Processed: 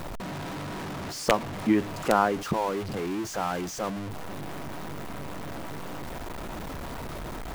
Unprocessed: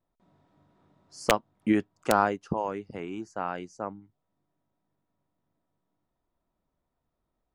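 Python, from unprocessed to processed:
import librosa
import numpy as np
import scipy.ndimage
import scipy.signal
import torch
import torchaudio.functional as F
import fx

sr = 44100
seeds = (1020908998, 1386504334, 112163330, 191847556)

y = x + 0.5 * 10.0 ** (-29.0 / 20.0) * np.sign(x)
y = fx.high_shelf(y, sr, hz=4600.0, db=-5.5)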